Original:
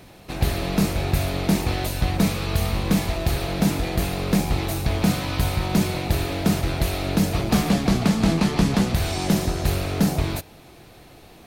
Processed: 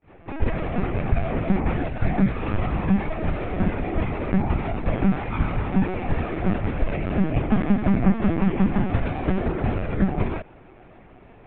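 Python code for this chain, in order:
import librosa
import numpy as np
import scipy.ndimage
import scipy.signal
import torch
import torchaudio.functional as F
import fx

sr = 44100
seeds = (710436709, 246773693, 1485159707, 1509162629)

y = fx.granulator(x, sr, seeds[0], grain_ms=254.0, per_s=11.0, spray_ms=15.0, spread_st=0)
y = scipy.signal.sosfilt(scipy.signal.butter(4, 2300.0, 'lowpass', fs=sr, output='sos'), y)
y = fx.lpc_vocoder(y, sr, seeds[1], excitation='pitch_kept', order=16)
y = F.gain(torch.from_numpy(y), 2.5).numpy()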